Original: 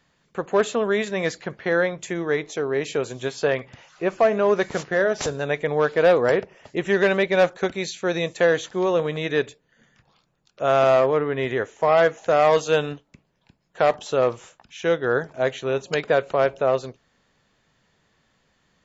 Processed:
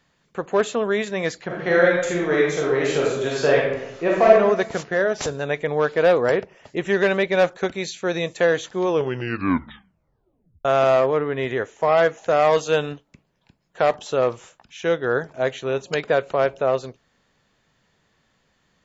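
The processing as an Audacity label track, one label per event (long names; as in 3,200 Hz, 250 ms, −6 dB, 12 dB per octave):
1.460000	4.310000	thrown reverb, RT60 0.9 s, DRR −4 dB
8.810000	8.810000	tape stop 1.84 s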